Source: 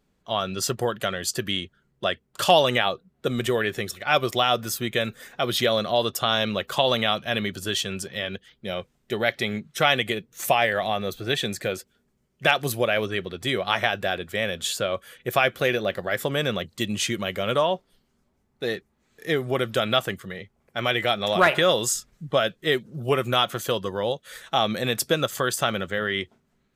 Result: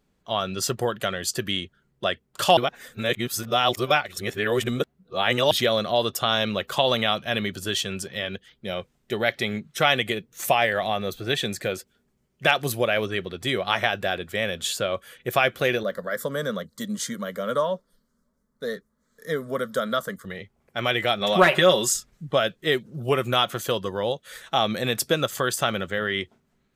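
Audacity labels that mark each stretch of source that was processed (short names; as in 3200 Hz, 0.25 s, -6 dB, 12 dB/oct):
2.570000	5.510000	reverse
15.830000	20.250000	fixed phaser centre 520 Hz, stages 8
21.210000	21.970000	comb 5.3 ms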